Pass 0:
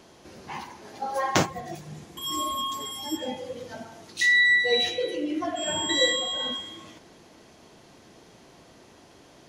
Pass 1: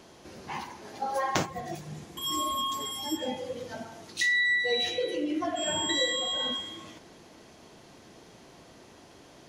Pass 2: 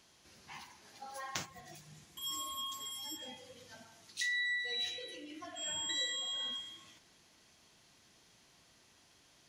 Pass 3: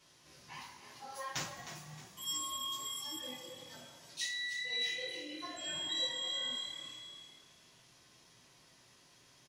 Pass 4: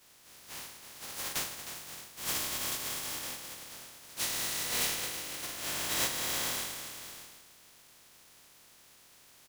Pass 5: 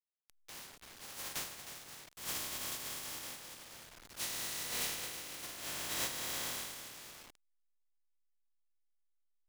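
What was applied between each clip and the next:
downward compressor 2.5 to 1, threshold −26 dBFS, peak gain reduction 7 dB
guitar amp tone stack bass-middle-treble 5-5-5
echo with shifted repeats 311 ms, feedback 40%, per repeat +37 Hz, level −11 dB; coupled-rooms reverb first 0.27 s, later 1.9 s, from −18 dB, DRR −7.5 dB; level −6.5 dB
compressing power law on the bin magnitudes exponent 0.16; level +5 dB
hold until the input has moved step −42.5 dBFS; one half of a high-frequency compander encoder only; level −6 dB

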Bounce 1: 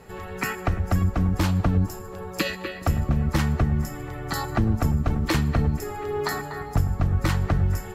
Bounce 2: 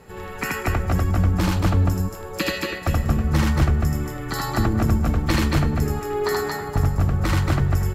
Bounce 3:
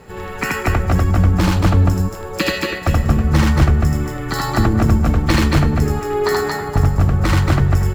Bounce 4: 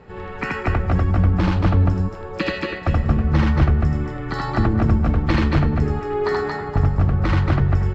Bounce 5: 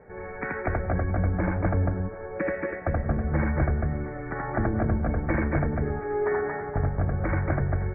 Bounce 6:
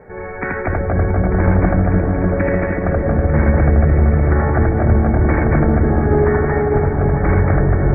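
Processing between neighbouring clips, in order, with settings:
parametric band 700 Hz −2.5 dB 0.2 octaves; on a send: loudspeakers that aren't time-aligned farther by 27 metres −1 dB, 78 metres −3 dB
running median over 3 samples; level +5.5 dB
high-frequency loss of the air 200 metres; level −3 dB
Chebyshev low-pass with heavy ripple 2,300 Hz, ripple 9 dB
in parallel at +3 dB: brickwall limiter −20 dBFS, peak gain reduction 7.5 dB; on the sum: echo whose low-pass opens from repeat to repeat 298 ms, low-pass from 400 Hz, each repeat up 1 octave, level 0 dB; level +1.5 dB

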